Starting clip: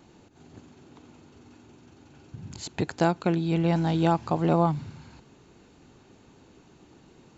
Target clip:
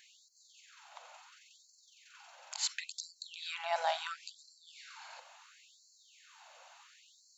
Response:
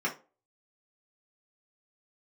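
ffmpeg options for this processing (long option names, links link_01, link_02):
-filter_complex "[0:a]alimiter=limit=-21dB:level=0:latency=1:release=125,asplit=2[link_01][link_02];[1:a]atrim=start_sample=2205,adelay=48[link_03];[link_02][link_03]afir=irnorm=-1:irlink=0,volume=-20dB[link_04];[link_01][link_04]amix=inputs=2:normalize=0,afftfilt=real='re*gte(b*sr/1024,510*pow(4100/510,0.5+0.5*sin(2*PI*0.72*pts/sr)))':imag='im*gte(b*sr/1024,510*pow(4100/510,0.5+0.5*sin(2*PI*0.72*pts/sr)))':win_size=1024:overlap=0.75,volume=5dB"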